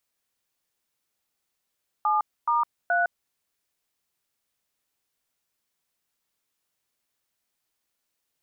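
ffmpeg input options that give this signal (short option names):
-f lavfi -i "aevalsrc='0.075*clip(min(mod(t,0.425),0.159-mod(t,0.425))/0.002,0,1)*(eq(floor(t/0.425),0)*(sin(2*PI*852*mod(t,0.425))+sin(2*PI*1209*mod(t,0.425)))+eq(floor(t/0.425),1)*(sin(2*PI*941*mod(t,0.425))+sin(2*PI*1209*mod(t,0.425)))+eq(floor(t/0.425),2)*(sin(2*PI*697*mod(t,0.425))+sin(2*PI*1477*mod(t,0.425))))':d=1.275:s=44100"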